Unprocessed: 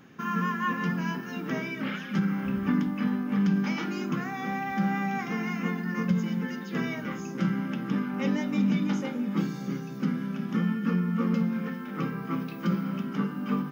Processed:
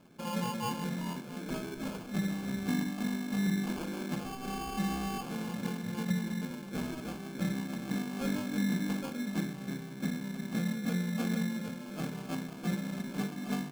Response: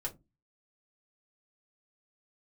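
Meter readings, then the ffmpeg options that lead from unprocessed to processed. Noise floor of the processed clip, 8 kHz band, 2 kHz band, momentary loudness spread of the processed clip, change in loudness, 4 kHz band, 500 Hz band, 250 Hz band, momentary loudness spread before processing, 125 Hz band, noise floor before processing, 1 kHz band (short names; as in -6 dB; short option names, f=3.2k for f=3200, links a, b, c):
-44 dBFS, n/a, -7.5 dB, 7 LU, -6.0 dB, 0.0 dB, -4.5 dB, -6.0 dB, 6 LU, -6.0 dB, -38 dBFS, -7.0 dB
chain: -af "acrusher=samples=23:mix=1:aa=0.000001,volume=-6dB"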